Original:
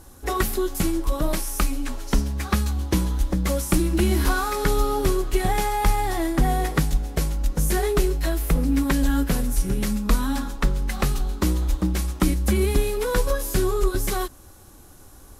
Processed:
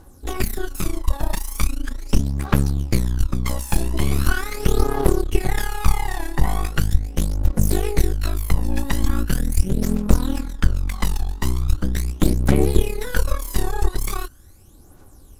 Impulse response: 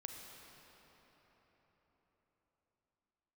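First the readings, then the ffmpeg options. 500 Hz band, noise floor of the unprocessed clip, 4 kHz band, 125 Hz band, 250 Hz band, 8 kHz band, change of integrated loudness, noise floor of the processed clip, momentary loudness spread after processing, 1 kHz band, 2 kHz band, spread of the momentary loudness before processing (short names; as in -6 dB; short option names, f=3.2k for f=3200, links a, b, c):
-2.0 dB, -47 dBFS, -0.5 dB, +3.0 dB, -0.5 dB, -1.0 dB, +0.5 dB, -46 dBFS, 6 LU, -3.0 dB, 0.0 dB, 5 LU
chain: -af "aeval=exprs='0.422*(cos(1*acos(clip(val(0)/0.422,-1,1)))-cos(1*PI/2))+0.188*(cos(4*acos(clip(val(0)/0.422,-1,1)))-cos(4*PI/2))':c=same,aphaser=in_gain=1:out_gain=1:delay=1.2:decay=0.62:speed=0.4:type=triangular,volume=-6.5dB"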